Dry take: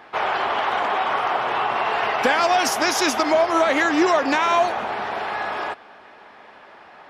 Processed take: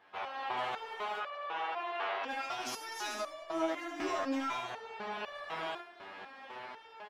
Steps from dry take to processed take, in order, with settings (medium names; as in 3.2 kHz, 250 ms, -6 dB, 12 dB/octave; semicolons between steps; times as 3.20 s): peaking EQ 3.2 kHz +3.5 dB 0.77 oct; level rider gain up to 16 dB; hard clipper -7 dBFS, distortion -20 dB; feedback delay 74 ms, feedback 25%, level -4 dB; compression 2.5:1, threshold -16 dBFS, peak gain reduction 6.5 dB; 1.18–2.28 s: three-band isolator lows -23 dB, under 250 Hz, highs -20 dB, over 4.8 kHz; resonator arpeggio 4 Hz 97–580 Hz; trim -8 dB